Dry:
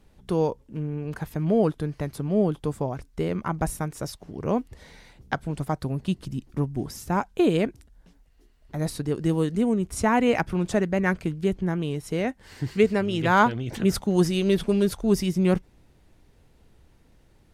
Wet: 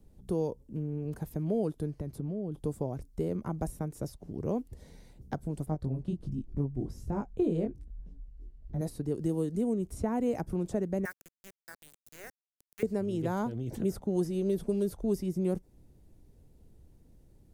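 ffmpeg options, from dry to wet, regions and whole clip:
ffmpeg -i in.wav -filter_complex "[0:a]asettb=1/sr,asplit=3[link_01][link_02][link_03];[link_01]atrim=end=1.914[link_04];[link_02]atrim=start=1.91:end=2.58,asetpts=PTS-STARTPTS,afade=type=in:duration=0.004:curve=qsin,afade=type=out:start_time=0.666:duration=0.004:curve=qsin,highshelf=frequency=4100:gain=-6.5,acompressor=threshold=-27dB:ratio=12:attack=3.2:release=140:knee=1:detection=peak[link_05];[link_03]atrim=start=2.576[link_06];[link_04][link_05]acrossfade=duration=0.004:curve1=hsin:curve2=qsin[link_07];[link_07][link_06]acrossfade=duration=0.004:curve1=qsin:curve2=hsin,asettb=1/sr,asplit=3[link_08][link_09][link_10];[link_08]atrim=end=5.664[link_11];[link_09]atrim=start=5.66:end=8.81,asetpts=PTS-STARTPTS,afade=type=in:duration=0.004:curve=qsin,afade=type=out:start_time=3.146:duration=0.004:curve=qsin,aemphasis=mode=reproduction:type=bsi,flanger=delay=19:depth=4.9:speed=1.3[link_12];[link_10]atrim=start=8.806[link_13];[link_11][link_12]acrossfade=duration=0.004:curve1=hsin:curve2=qsin[link_14];[link_14][link_13]acrossfade=duration=0.004:curve1=qsin:curve2=hsin,asettb=1/sr,asplit=3[link_15][link_16][link_17];[link_15]atrim=end=11.054[link_18];[link_16]atrim=start=11.05:end=12.83,asetpts=PTS-STARTPTS,afade=type=in:duration=0.004:curve=qsin,afade=type=out:start_time=1.776:duration=0.004:curve=qsin,highpass=frequency=1600:width_type=q:width=2.8,aeval=exprs='val(0)*gte(abs(val(0)),0.0266)':channel_layout=same[link_19];[link_17]atrim=start=12.826[link_20];[link_18][link_19]acrossfade=duration=0.004:curve1=hsin:curve2=qsin[link_21];[link_21][link_20]acrossfade=duration=0.004:curve1=qsin:curve2=hsin,equalizer=frequency=1200:width_type=o:width=1.7:gain=-7,acrossover=split=320|1900|4100[link_22][link_23][link_24][link_25];[link_22]acompressor=threshold=-34dB:ratio=4[link_26];[link_23]acompressor=threshold=-27dB:ratio=4[link_27];[link_24]acompressor=threshold=-53dB:ratio=4[link_28];[link_25]acompressor=threshold=-47dB:ratio=4[link_29];[link_26][link_27][link_28][link_29]amix=inputs=4:normalize=0,equalizer=frequency=2700:width_type=o:width=2.8:gain=-12.5" out.wav

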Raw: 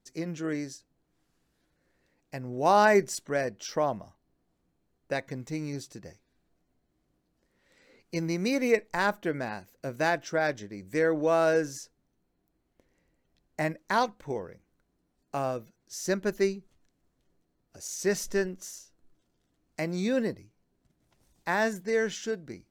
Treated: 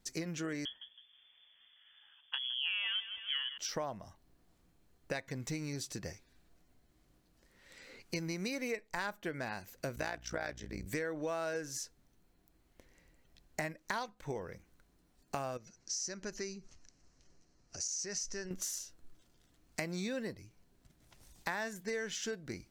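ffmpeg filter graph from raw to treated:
ffmpeg -i in.wav -filter_complex "[0:a]asettb=1/sr,asplit=3[link_01][link_02][link_03];[link_01]atrim=end=0.654[link_04];[link_02]atrim=start=0.65:end=3.58,asetpts=PTS-STARTPTS,afade=type=in:duration=0.004:curve=qsin,afade=type=out:start_time=2.926:duration=0.004:curve=qsin,aeval=exprs='clip(val(0),-1,0.141)':channel_layout=same,aecho=1:1:161|322|483:0.168|0.0588|0.0206,atrim=end_sample=129213,lowpass=frequency=3000:width_type=q:width=0.5098,lowpass=frequency=3000:width_type=q:width=0.6013,lowpass=frequency=3000:width_type=q:width=0.9,lowpass=frequency=3000:width_type=q:width=2.563,afreqshift=-3500[link_05];[link_03]atrim=start=3.576[link_06];[link_04][link_05]acrossfade=duration=0.004:curve1=hsin:curve2=qsin[link_07];[link_07][link_06]acrossfade=duration=0.004:curve1=qsin:curve2=hsin,asettb=1/sr,asplit=3[link_08][link_09][link_10];[link_08]atrim=end=9.964[link_11];[link_09]atrim=start=9.96:end=10.86,asetpts=PTS-STARTPTS,afade=type=in:duration=0.004:curve=qsin,afade=type=out:start_time=0.896:duration=0.004:curve=qsin,tremolo=f=60:d=0.857,aeval=exprs='val(0)+0.00282*(sin(2*PI*60*n/s)+sin(2*PI*2*60*n/s)/2+sin(2*PI*3*60*n/s)/3+sin(2*PI*4*60*n/s)/4+sin(2*PI*5*60*n/s)/5)':channel_layout=same[link_12];[link_10]atrim=start=10.856[link_13];[link_11][link_12]acrossfade=duration=0.004:curve1=hsin:curve2=qsin[link_14];[link_14][link_13]acrossfade=duration=0.004:curve1=qsin:curve2=hsin,asettb=1/sr,asplit=3[link_15][link_16][link_17];[link_15]atrim=end=15.574[link_18];[link_16]atrim=start=15.57:end=18.51,asetpts=PTS-STARTPTS,afade=type=in:duration=0.004:curve=qsin,afade=type=out:start_time=2.936:duration=0.004:curve=qsin,equalizer=frequency=3500:width=5:gain=-9.5,acompressor=threshold=-52dB:ratio=2:attack=3.2:release=140:knee=1:detection=peak,lowpass=frequency=5900:width_type=q:width=3.2[link_19];[link_17]atrim=start=18.506[link_20];[link_18][link_19]acrossfade=duration=0.004:curve1=hsin:curve2=qsin[link_21];[link_21][link_20]acrossfade=duration=0.004:curve1=qsin:curve2=hsin,equalizer=frequency=320:width=0.31:gain=-7,acompressor=threshold=-45dB:ratio=6,volume=9dB" out.wav

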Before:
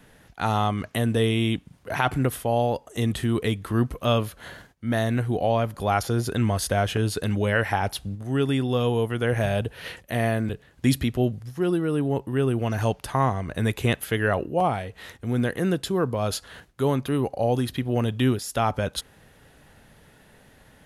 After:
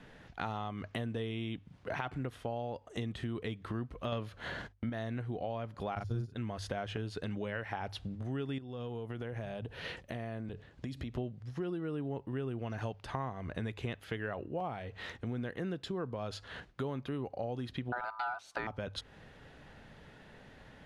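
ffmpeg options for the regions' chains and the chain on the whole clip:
ffmpeg -i in.wav -filter_complex "[0:a]asettb=1/sr,asplit=3[link_01][link_02][link_03];[link_01]atrim=end=4.124[link_04];[link_02]atrim=start=4.12:end=4.9,asetpts=PTS-STARTPTS,afade=type=in:duration=0.004:curve=qsin,afade=type=out:start_time=0.776:duration=0.004:curve=qsin,acontrast=79,agate=range=-18dB:threshold=-46dB:ratio=16:release=100:detection=peak[link_05];[link_03]atrim=start=4.896[link_06];[link_04][link_05]acrossfade=duration=0.004:curve1=hsin:curve2=qsin[link_07];[link_07][link_06]acrossfade=duration=0.004:curve1=qsin:curve2=hsin,asettb=1/sr,asplit=3[link_08][link_09][link_10];[link_08]atrim=end=5.954[link_11];[link_09]atrim=start=5.95:end=6.36,asetpts=PTS-STARTPTS,afade=type=in:duration=0.004:curve=qsin,afade=type=out:start_time=0.406:duration=0.004:curve=qsin,agate=range=-18dB:threshold=-24dB:ratio=16:release=100:detection=peak,bass=frequency=250:gain=13,treble=frequency=4000:gain=8,asplit=2[link_12][link_13];[link_13]adelay=40,volume=-3dB[link_14];[link_12][link_14]amix=inputs=2:normalize=0,atrim=end_sample=18081[link_15];[link_10]atrim=start=6.356[link_16];[link_11][link_15]acrossfade=duration=0.004:curve1=hsin:curve2=qsin[link_17];[link_17][link_16]acrossfade=duration=0.004:curve1=qsin:curve2=hsin,asettb=1/sr,asplit=3[link_18][link_19][link_20];[link_18]atrim=end=8.584[link_21];[link_19]atrim=start=8.58:end=11.18,asetpts=PTS-STARTPTS,afade=type=in:duration=0.004:curve=qsin,afade=type=out:start_time=2.596:duration=0.004:curve=qsin,equalizer=frequency=1900:width_type=o:width=2.2:gain=-3.5,acompressor=threshold=-33dB:ratio=10:attack=3.2:release=140:knee=1:detection=peak[link_22];[link_20]atrim=start=11.176[link_23];[link_21][link_22]acrossfade=duration=0.004:curve1=hsin:curve2=qsin[link_24];[link_24][link_23]acrossfade=duration=0.004:curve1=qsin:curve2=hsin,asettb=1/sr,asplit=3[link_25][link_26][link_27];[link_25]atrim=end=17.924[link_28];[link_26]atrim=start=17.92:end=18.67,asetpts=PTS-STARTPTS,afade=type=in:duration=0.004:curve=qsin,afade=type=out:start_time=0.746:duration=0.004:curve=qsin,lowpass=12000,equalizer=frequency=360:width_type=o:width=0.94:gain=10.5,aeval=exprs='val(0)*sin(2*PI*1100*n/s)':channel_layout=same[link_29];[link_27]atrim=start=18.666[link_30];[link_28][link_29]acrossfade=duration=0.004:curve1=hsin:curve2=qsin[link_31];[link_31][link_30]acrossfade=duration=0.004:curve1=qsin:curve2=hsin,lowpass=4500,bandreject=frequency=50:width_type=h:width=6,bandreject=frequency=100:width_type=h:width=6,acompressor=threshold=-35dB:ratio=5,volume=-1dB" out.wav

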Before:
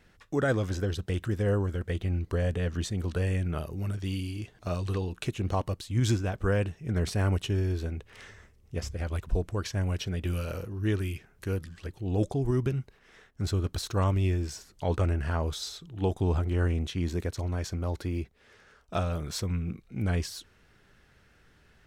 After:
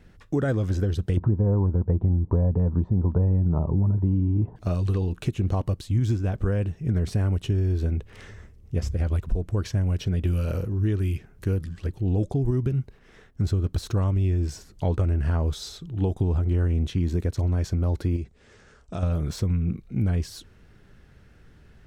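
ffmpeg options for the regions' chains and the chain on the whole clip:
ffmpeg -i in.wav -filter_complex "[0:a]asettb=1/sr,asplit=3[link_01][link_02][link_03];[link_01]atrim=end=1.174[link_04];[link_02]atrim=start=1.17:end=4.56,asetpts=PTS-STARTPTS,afade=type=in:duration=0.004:curve=qsin,afade=type=out:start_time=3.386:duration=0.004:curve=qsin,lowpass=frequency=940:width_type=q:width=6.6,equalizer=frequency=150:width=0.32:gain=12[link_05];[link_03]atrim=start=4.556[link_06];[link_04][link_05]acrossfade=duration=0.004:curve1=hsin:curve2=qsin[link_07];[link_07][link_06]acrossfade=duration=0.004:curve1=qsin:curve2=hsin,asettb=1/sr,asplit=3[link_08][link_09][link_10];[link_08]atrim=end=18.164[link_11];[link_09]atrim=start=18.16:end=19.03,asetpts=PTS-STARTPTS,afade=type=in:duration=0.004:curve=qsin,afade=type=out:start_time=0.866:duration=0.004:curve=qsin,lowpass=frequency=7800:width_type=q:width=2.4,acompressor=threshold=-38dB:ratio=2.5:attack=3.2:release=140:knee=1:detection=peak[link_12];[link_10]atrim=start=19.026[link_13];[link_11][link_12]acrossfade=duration=0.004:curve1=hsin:curve2=qsin[link_14];[link_14][link_13]acrossfade=duration=0.004:curve1=qsin:curve2=hsin,deesser=0.75,lowshelf=frequency=460:gain=11,acompressor=threshold=-20dB:ratio=6" out.wav

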